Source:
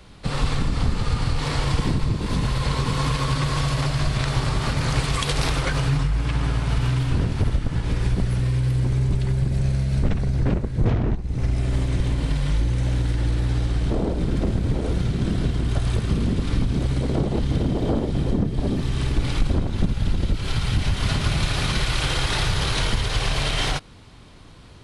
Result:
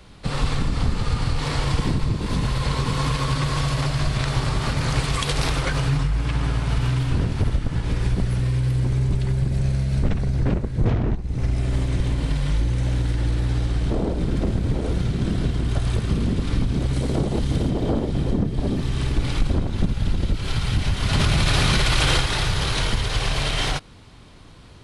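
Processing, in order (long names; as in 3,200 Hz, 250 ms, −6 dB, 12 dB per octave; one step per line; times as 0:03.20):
0:16.93–0:17.70: high-shelf EQ 6,800 Hz +9.5 dB
0:21.13–0:22.21: envelope flattener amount 100%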